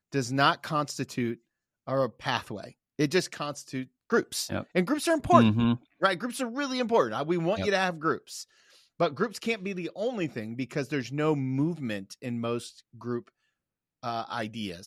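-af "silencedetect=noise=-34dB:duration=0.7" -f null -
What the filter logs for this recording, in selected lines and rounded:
silence_start: 13.19
silence_end: 14.04 | silence_duration: 0.85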